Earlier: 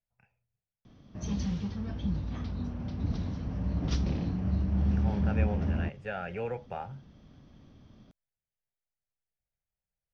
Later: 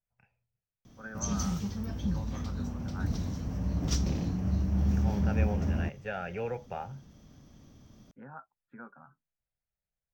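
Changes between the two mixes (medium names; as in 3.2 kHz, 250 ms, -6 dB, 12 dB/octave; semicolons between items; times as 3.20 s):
first voice: unmuted; background: remove low-pass 4.4 kHz 24 dB/octave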